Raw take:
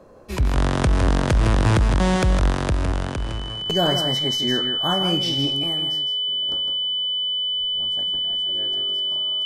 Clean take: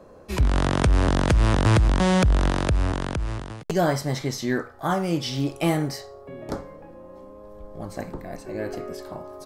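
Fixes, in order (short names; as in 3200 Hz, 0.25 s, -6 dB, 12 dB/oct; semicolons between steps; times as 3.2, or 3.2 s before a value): notch 3000 Hz, Q 30; inverse comb 0.159 s -7 dB; gain 0 dB, from 5.59 s +11 dB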